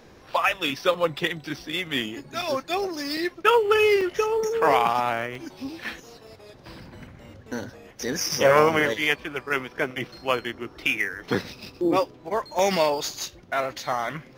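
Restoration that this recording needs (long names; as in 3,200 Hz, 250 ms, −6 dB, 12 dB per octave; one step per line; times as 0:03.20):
repair the gap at 0:02.42/0:03.17/0:04.01/0:05.35/0:05.84/0:06.27/0:12.59, 3.2 ms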